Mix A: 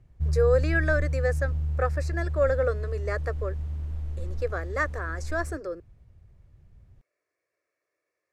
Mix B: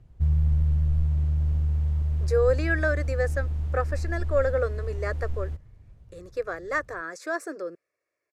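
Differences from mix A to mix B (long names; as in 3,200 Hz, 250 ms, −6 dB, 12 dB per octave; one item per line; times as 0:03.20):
speech: entry +1.95 s
background +3.5 dB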